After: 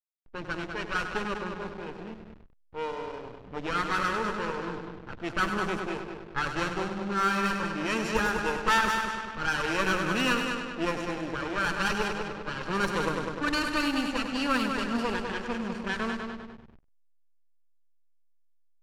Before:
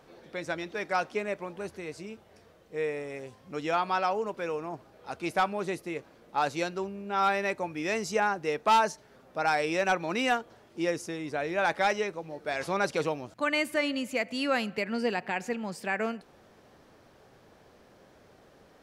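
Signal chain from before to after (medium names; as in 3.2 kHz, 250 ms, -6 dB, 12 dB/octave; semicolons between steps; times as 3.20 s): comb filter that takes the minimum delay 0.7 ms; multi-head delay 100 ms, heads first and second, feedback 62%, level -8 dB; hysteresis with a dead band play -36.5 dBFS; level-controlled noise filter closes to 2.6 kHz, open at -24.5 dBFS; trim +2 dB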